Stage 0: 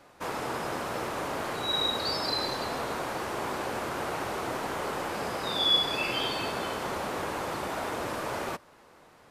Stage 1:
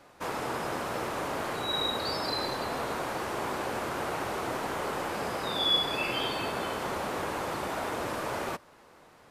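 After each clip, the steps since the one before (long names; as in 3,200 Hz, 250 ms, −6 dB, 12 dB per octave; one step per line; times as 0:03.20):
dynamic equaliser 5,100 Hz, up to −4 dB, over −43 dBFS, Q 1.1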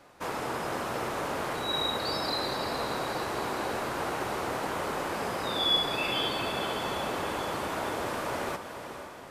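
feedback delay with all-pass diffusion 491 ms, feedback 53%, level −9 dB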